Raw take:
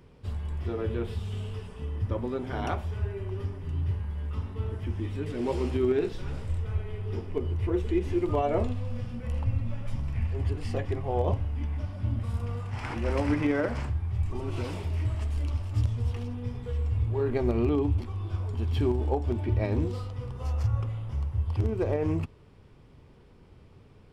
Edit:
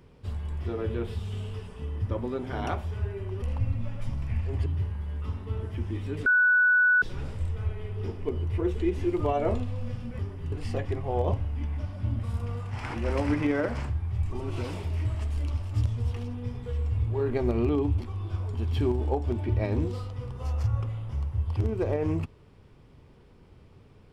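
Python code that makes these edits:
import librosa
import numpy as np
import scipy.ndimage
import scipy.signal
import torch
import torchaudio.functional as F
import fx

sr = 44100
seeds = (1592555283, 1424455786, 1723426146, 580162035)

y = fx.edit(x, sr, fx.swap(start_s=3.42, length_s=0.33, other_s=9.28, other_length_s=1.24),
    fx.bleep(start_s=5.35, length_s=0.76, hz=1480.0, db=-17.5), tone=tone)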